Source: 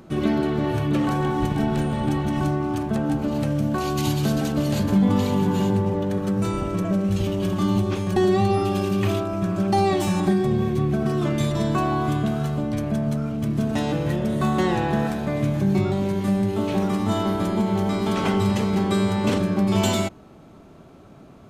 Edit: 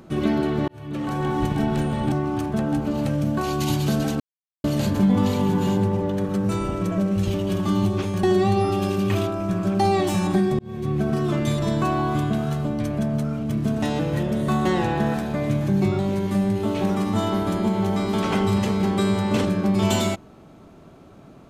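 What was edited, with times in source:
0:00.68–0:01.34: fade in
0:02.12–0:02.49: remove
0:04.57: splice in silence 0.44 s
0:10.52–0:10.93: fade in

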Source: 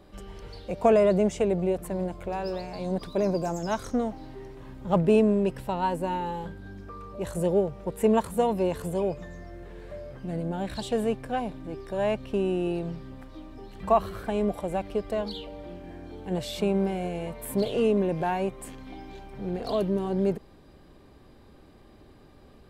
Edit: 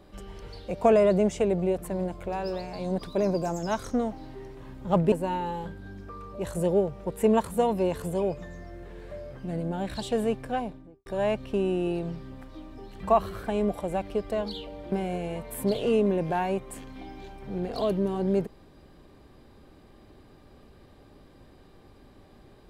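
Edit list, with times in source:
0:05.12–0:05.92: remove
0:11.31–0:11.86: fade out and dull
0:15.72–0:16.83: remove

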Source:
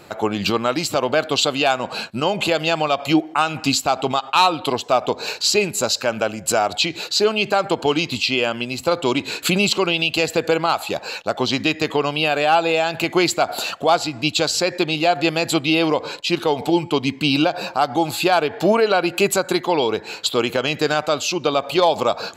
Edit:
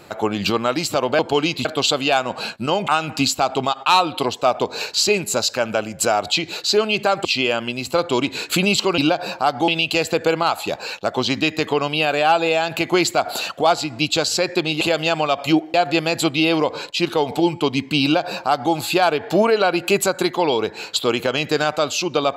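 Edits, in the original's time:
0:02.42–0:03.35: move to 0:15.04
0:07.72–0:08.18: move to 0:01.19
0:17.33–0:18.03: duplicate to 0:09.91

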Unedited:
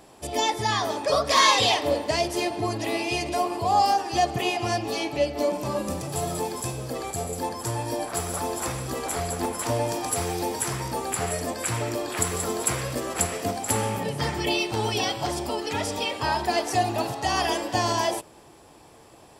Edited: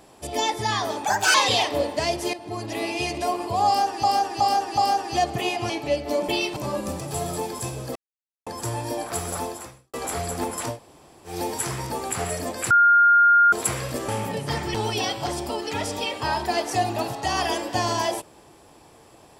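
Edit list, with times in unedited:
0:01.05–0:01.46: play speed 139%
0:02.45–0:03.14: fade in equal-power, from −13 dB
0:03.78–0:04.15: repeat, 4 plays
0:04.70–0:04.99: remove
0:06.97–0:07.48: silence
0:08.43–0:08.95: fade out quadratic
0:09.73–0:10.33: fill with room tone, crossfade 0.16 s
0:11.72–0:12.54: beep over 1,410 Hz −12 dBFS
0:13.10–0:13.80: remove
0:14.46–0:14.74: move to 0:05.58

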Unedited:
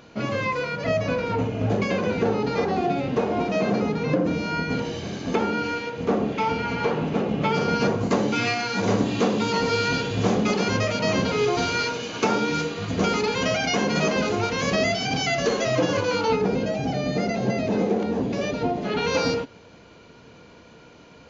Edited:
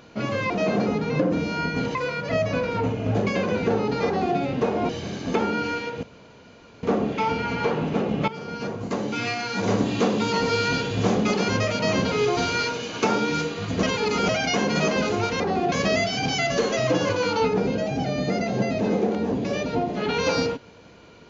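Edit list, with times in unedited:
0:02.61–0:02.93: duplicate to 0:14.60
0:03.44–0:04.89: move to 0:00.50
0:06.03: splice in room tone 0.80 s
0:07.48–0:09.08: fade in, from −14.5 dB
0:13.03–0:13.49: reverse

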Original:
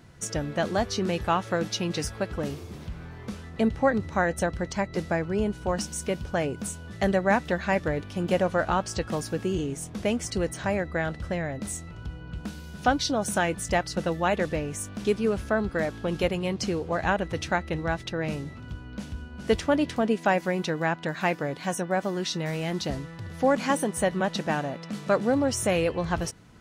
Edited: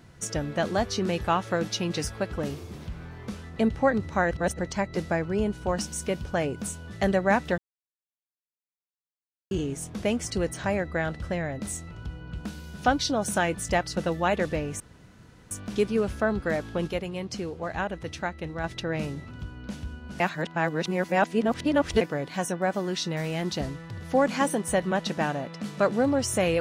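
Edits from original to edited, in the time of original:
0:04.31–0:04.59: reverse
0:07.58–0:09.51: silence
0:14.80: splice in room tone 0.71 s
0:16.16–0:17.93: clip gain −5 dB
0:19.49–0:21.30: reverse

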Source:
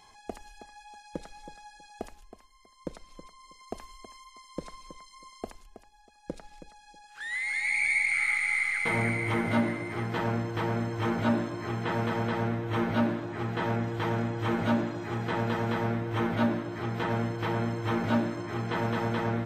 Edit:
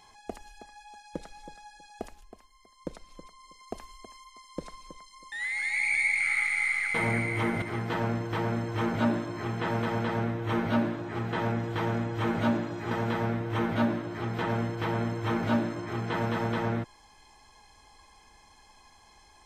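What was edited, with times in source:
0:05.32–0:07.23: remove
0:09.53–0:09.86: remove
0:15.15–0:15.52: remove

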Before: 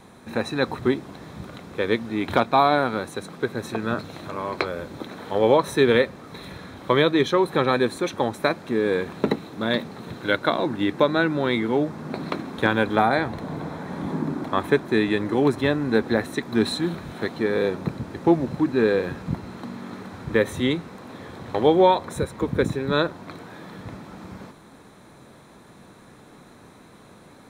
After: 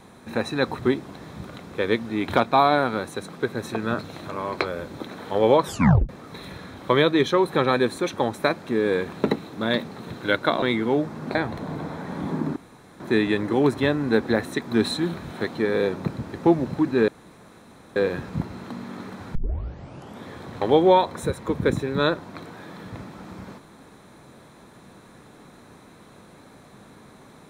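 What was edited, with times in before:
0:05.64: tape stop 0.45 s
0:10.62–0:11.45: remove
0:12.18–0:13.16: remove
0:14.37–0:14.81: fill with room tone
0:18.89: splice in room tone 0.88 s
0:20.28: tape start 0.91 s

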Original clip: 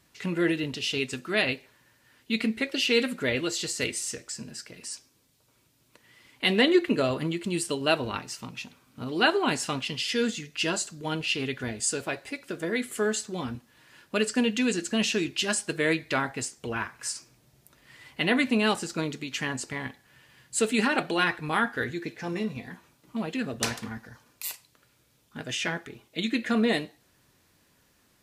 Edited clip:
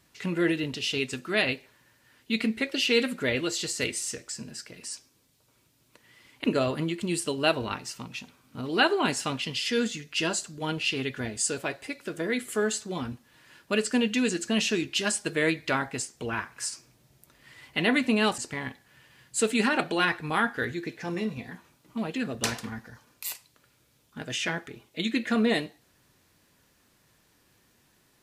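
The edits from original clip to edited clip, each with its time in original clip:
0:06.44–0:06.87: remove
0:18.81–0:19.57: remove

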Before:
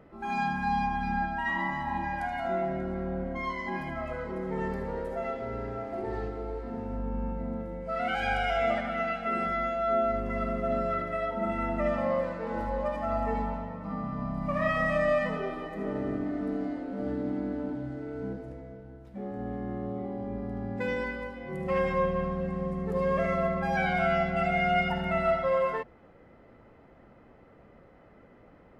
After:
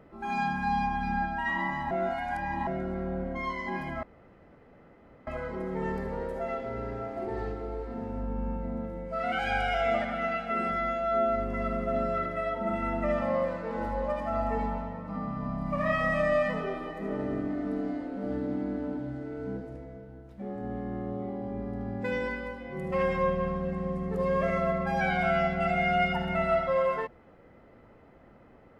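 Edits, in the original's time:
0:01.91–0:02.67: reverse
0:04.03: splice in room tone 1.24 s

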